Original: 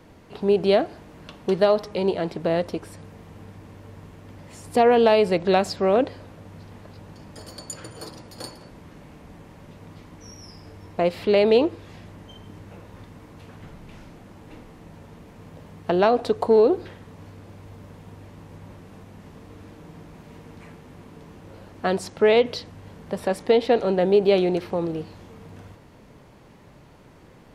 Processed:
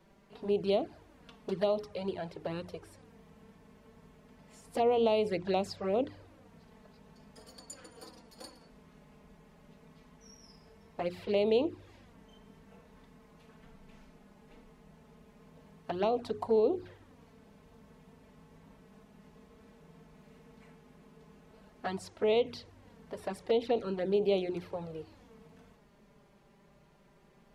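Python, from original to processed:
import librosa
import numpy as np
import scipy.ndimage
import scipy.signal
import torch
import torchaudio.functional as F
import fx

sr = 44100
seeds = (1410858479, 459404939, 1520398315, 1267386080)

y = fx.env_flanger(x, sr, rest_ms=5.4, full_db=-14.5)
y = fx.hum_notches(y, sr, base_hz=60, count=7)
y = F.gain(torch.from_numpy(y), -9.0).numpy()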